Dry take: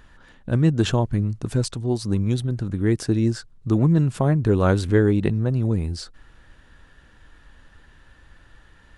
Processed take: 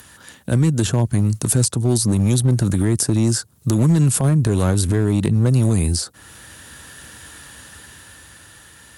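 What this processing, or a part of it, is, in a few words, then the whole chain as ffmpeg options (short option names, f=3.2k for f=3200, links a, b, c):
FM broadcast chain: -filter_complex "[0:a]highpass=f=73:w=0.5412,highpass=f=73:w=1.3066,dynaudnorm=f=260:g=13:m=11.5dB,acrossover=split=260|1400[a][b][c];[a]acompressor=threshold=-18dB:ratio=4[d];[b]acompressor=threshold=-27dB:ratio=4[e];[c]acompressor=threshold=-44dB:ratio=4[f];[d][e][f]amix=inputs=3:normalize=0,aemphasis=mode=production:type=50fm,alimiter=limit=-14dB:level=0:latency=1:release=49,asoftclip=type=hard:threshold=-16dB,lowpass=f=15k:w=0.5412,lowpass=f=15k:w=1.3066,aemphasis=mode=production:type=50fm,volume=6.5dB"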